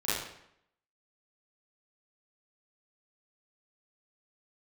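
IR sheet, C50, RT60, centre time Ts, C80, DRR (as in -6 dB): -1.0 dB, 0.75 s, 73 ms, 3.5 dB, -13.0 dB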